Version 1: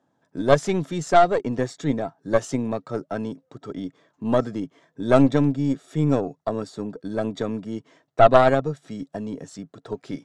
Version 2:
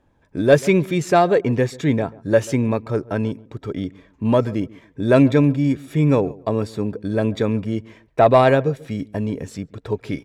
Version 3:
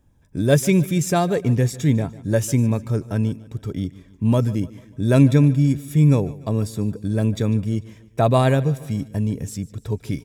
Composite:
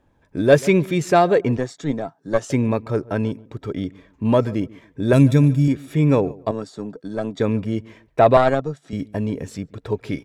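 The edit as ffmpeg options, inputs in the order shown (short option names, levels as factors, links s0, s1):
-filter_complex "[0:a]asplit=3[s0][s1][s2];[1:a]asplit=5[s3][s4][s5][s6][s7];[s3]atrim=end=1.572[s8];[s0]atrim=start=1.568:end=2.502[s9];[s4]atrim=start=2.498:end=5.132[s10];[2:a]atrim=start=5.128:end=5.682[s11];[s5]atrim=start=5.678:end=6.512[s12];[s1]atrim=start=6.508:end=7.402[s13];[s6]atrim=start=7.398:end=8.372[s14];[s2]atrim=start=8.368:end=8.932[s15];[s7]atrim=start=8.928[s16];[s8][s9]acrossfade=d=0.004:c1=hsin:c2=hsin[s17];[s17][s10]acrossfade=d=0.004:c1=hsin:c2=hsin[s18];[s18][s11]acrossfade=d=0.004:c1=hsin:c2=hsin[s19];[s19][s12]acrossfade=d=0.004:c1=hsin:c2=hsin[s20];[s20][s13]acrossfade=d=0.004:c1=hsin:c2=hsin[s21];[s21][s14]acrossfade=d=0.004:c1=hsin:c2=hsin[s22];[s22][s15]acrossfade=d=0.004:c1=hsin:c2=hsin[s23];[s23][s16]acrossfade=d=0.004:c1=hsin:c2=hsin"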